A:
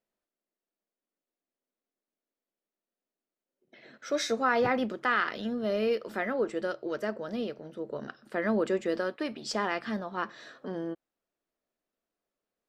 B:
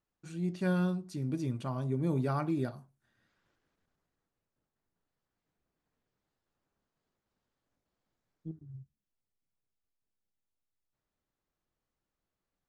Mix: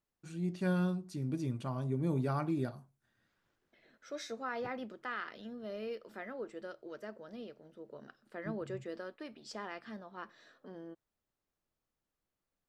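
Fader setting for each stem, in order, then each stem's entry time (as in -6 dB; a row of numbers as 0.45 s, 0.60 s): -13.0 dB, -2.0 dB; 0.00 s, 0.00 s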